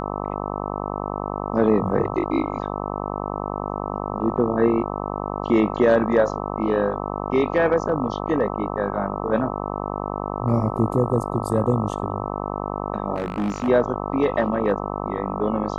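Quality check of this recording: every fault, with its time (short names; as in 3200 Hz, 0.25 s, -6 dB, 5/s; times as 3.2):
buzz 50 Hz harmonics 26 -28 dBFS
13.15–13.69 clipped -20 dBFS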